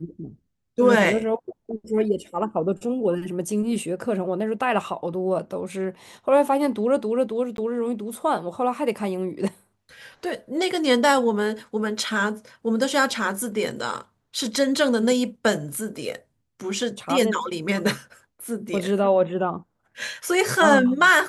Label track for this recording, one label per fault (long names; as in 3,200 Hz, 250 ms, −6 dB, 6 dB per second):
7.570000	7.580000	drop-out 12 ms